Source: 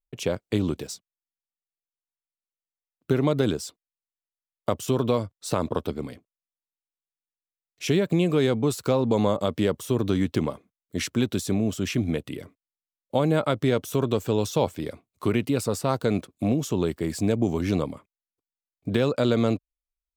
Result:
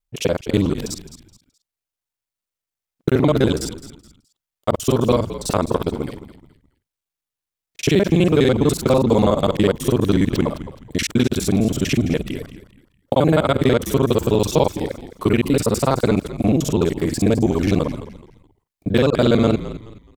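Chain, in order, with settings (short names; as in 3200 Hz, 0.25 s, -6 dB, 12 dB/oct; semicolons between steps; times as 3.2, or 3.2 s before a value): local time reversal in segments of 41 ms; frequency-shifting echo 0.212 s, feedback 31%, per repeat -60 Hz, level -13.5 dB; gain +7 dB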